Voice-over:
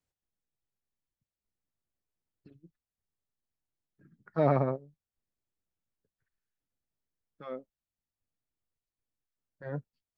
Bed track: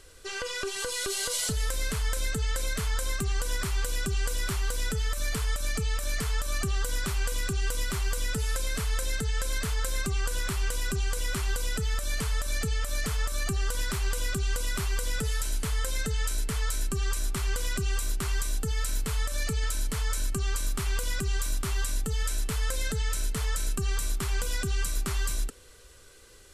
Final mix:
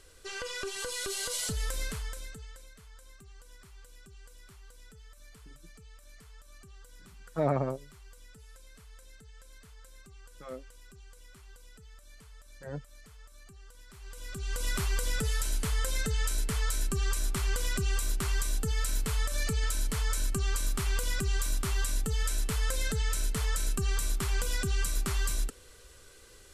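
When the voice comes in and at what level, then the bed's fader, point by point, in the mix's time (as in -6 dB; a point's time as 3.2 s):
3.00 s, -2.5 dB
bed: 1.82 s -4 dB
2.74 s -24 dB
13.85 s -24 dB
14.68 s -1 dB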